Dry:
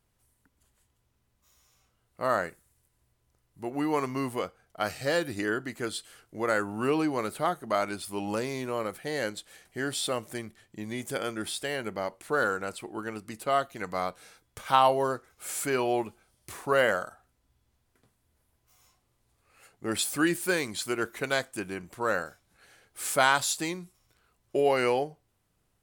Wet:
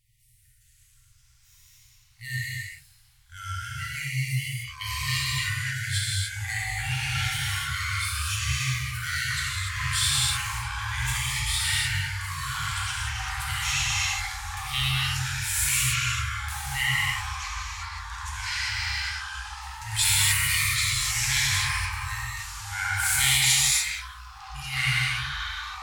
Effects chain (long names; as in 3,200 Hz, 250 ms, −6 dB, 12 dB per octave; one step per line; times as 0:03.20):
reverb whose tail is shaped and stops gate 320 ms flat, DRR −6.5 dB
brick-wall band-stop 140–1,800 Hz
delay with pitch and tempo change per echo 368 ms, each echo −5 semitones, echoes 3
level +3.5 dB